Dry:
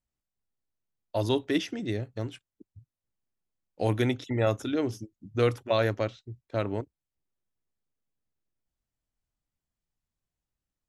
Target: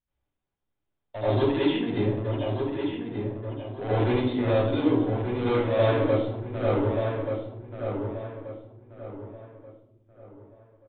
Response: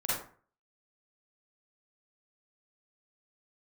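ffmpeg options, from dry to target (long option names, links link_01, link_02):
-filter_complex "[0:a]aresample=8000,asoftclip=type=tanh:threshold=-27.5dB,aresample=44100,asplit=2[link_01][link_02];[link_02]adelay=1182,lowpass=frequency=2500:poles=1,volume=-5.5dB,asplit=2[link_03][link_04];[link_04]adelay=1182,lowpass=frequency=2500:poles=1,volume=0.36,asplit=2[link_05][link_06];[link_06]adelay=1182,lowpass=frequency=2500:poles=1,volume=0.36,asplit=2[link_07][link_08];[link_08]adelay=1182,lowpass=frequency=2500:poles=1,volume=0.36[link_09];[link_01][link_03][link_05][link_07][link_09]amix=inputs=5:normalize=0[link_10];[1:a]atrim=start_sample=2205,asetrate=25137,aresample=44100[link_11];[link_10][link_11]afir=irnorm=-1:irlink=0,volume=-3dB"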